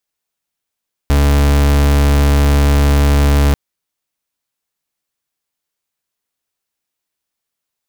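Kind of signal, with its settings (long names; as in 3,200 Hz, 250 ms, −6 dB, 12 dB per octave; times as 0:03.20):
pulse wave 71.4 Hz, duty 39% −10.5 dBFS 2.44 s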